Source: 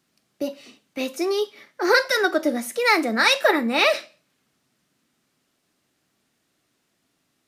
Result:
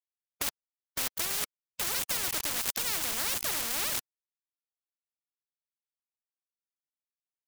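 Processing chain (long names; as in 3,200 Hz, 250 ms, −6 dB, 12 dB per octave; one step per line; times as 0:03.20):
centre clipping without the shift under −26 dBFS
every bin compressed towards the loudest bin 10 to 1
level −8.5 dB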